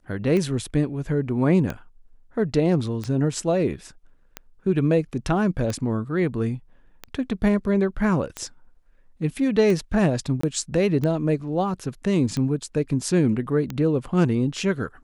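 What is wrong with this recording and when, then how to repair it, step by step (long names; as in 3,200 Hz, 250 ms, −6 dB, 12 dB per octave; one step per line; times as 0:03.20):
scratch tick 45 rpm −15 dBFS
0:10.41–0:10.43: drop-out 24 ms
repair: click removal
repair the gap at 0:10.41, 24 ms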